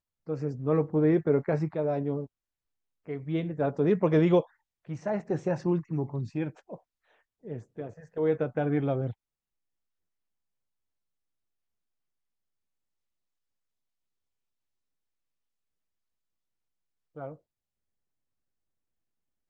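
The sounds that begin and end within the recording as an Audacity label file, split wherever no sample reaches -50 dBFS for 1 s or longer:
17.160000	17.360000	sound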